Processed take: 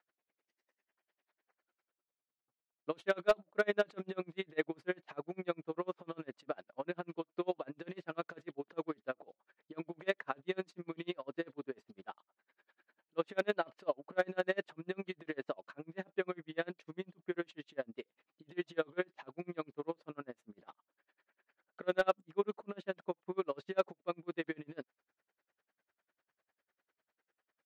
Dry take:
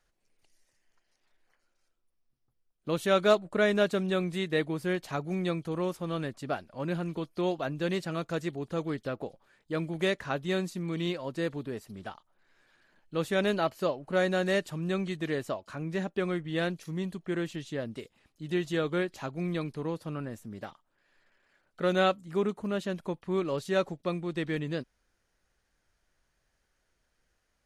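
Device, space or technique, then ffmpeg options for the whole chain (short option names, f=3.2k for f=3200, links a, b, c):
helicopter radio: -af "highpass=320,lowpass=2.6k,aeval=exprs='val(0)*pow(10,-36*(0.5-0.5*cos(2*PI*10*n/s))/20)':c=same,asoftclip=type=hard:threshold=-19.5dB,volume=1dB"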